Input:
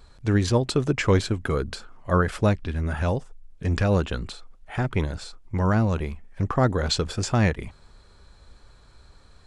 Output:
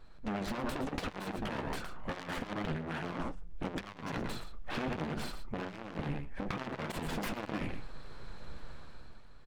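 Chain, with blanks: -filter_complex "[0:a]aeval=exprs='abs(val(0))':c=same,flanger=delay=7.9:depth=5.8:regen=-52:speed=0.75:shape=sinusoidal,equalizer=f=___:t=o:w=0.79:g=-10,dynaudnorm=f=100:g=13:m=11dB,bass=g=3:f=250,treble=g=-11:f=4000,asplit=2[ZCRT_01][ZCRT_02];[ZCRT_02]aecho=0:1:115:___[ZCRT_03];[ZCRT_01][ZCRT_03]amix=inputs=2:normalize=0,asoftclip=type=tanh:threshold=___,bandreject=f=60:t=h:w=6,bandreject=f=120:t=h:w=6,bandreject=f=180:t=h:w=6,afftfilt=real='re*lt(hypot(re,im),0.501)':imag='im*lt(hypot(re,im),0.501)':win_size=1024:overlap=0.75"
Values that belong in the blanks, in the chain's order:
91, 0.266, -18.5dB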